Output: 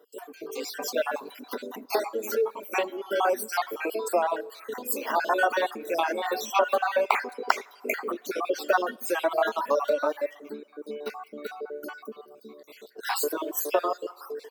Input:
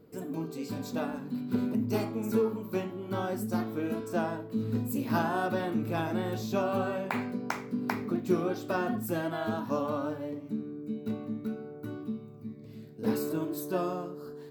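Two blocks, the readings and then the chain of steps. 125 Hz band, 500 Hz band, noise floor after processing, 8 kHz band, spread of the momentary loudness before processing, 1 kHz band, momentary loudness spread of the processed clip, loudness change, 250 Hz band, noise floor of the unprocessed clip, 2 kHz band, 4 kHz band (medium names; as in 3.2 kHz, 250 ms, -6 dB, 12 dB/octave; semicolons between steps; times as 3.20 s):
under -25 dB, +6.0 dB, -54 dBFS, +11.0 dB, 9 LU, +8.5 dB, 15 LU, +4.5 dB, -8.5 dB, -46 dBFS, +9.0 dB, +9.5 dB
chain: random holes in the spectrogram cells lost 48%; compression, threshold -32 dBFS, peak gain reduction 10 dB; plate-style reverb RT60 2 s, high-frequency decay 0.85×, DRR 15.5 dB; reverb removal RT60 1 s; high-pass 460 Hz 24 dB/octave; level rider gain up to 10 dB; trim +6 dB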